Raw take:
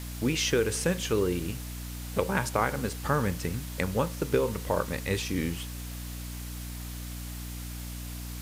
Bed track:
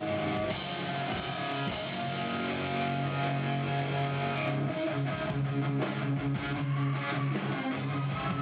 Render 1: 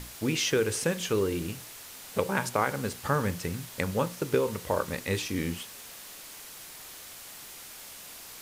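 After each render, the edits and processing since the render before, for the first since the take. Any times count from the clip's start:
mains-hum notches 60/120/180/240/300/360 Hz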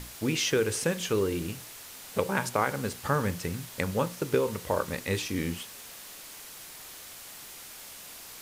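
no processing that can be heard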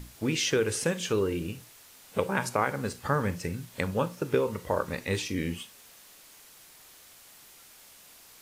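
noise reduction from a noise print 8 dB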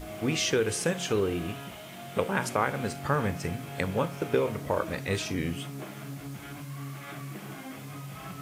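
mix in bed track −9 dB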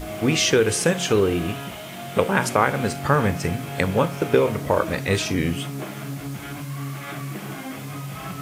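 level +8 dB

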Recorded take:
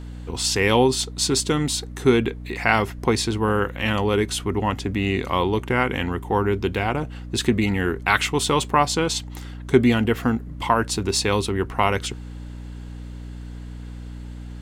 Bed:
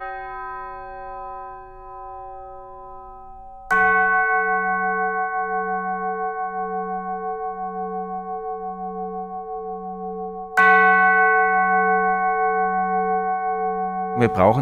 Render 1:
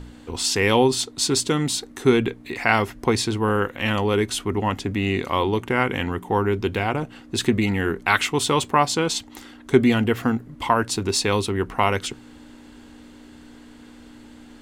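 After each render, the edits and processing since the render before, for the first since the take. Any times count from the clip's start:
hum removal 60 Hz, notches 3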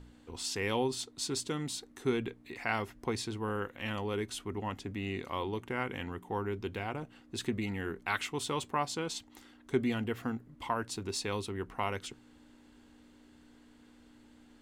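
level −14 dB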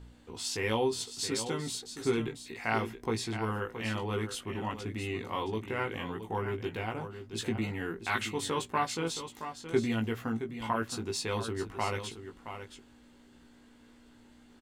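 double-tracking delay 18 ms −3.5 dB
single-tap delay 671 ms −10 dB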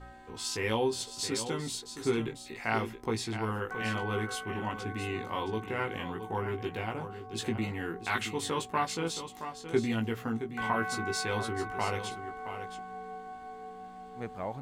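mix in bed −21.5 dB

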